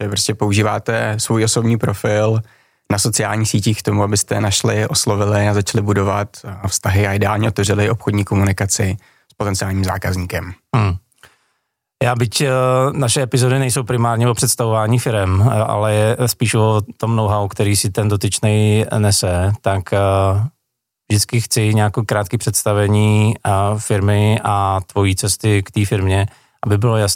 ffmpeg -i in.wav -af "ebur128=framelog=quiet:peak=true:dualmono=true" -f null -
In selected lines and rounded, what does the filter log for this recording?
Integrated loudness:
  I:         -13.3 LUFS
  Threshold: -23.6 LUFS
Loudness range:
  LRA:         3.2 LU
  Threshold: -33.6 LUFS
  LRA low:   -15.7 LUFS
  LRA high:  -12.4 LUFS
True peak:
  Peak:       -2.6 dBFS